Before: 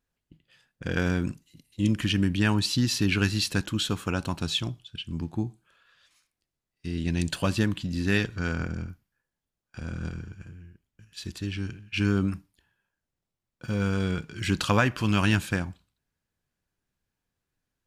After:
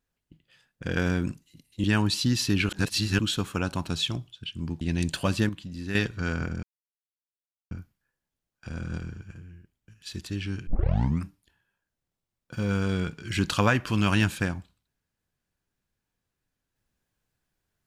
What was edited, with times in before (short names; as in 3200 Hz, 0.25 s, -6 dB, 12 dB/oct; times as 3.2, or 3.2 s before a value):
1.84–2.36 cut
3.21–3.71 reverse
5.33–7 cut
7.68–8.14 gain -7.5 dB
8.82 insert silence 1.08 s
11.78 tape start 0.57 s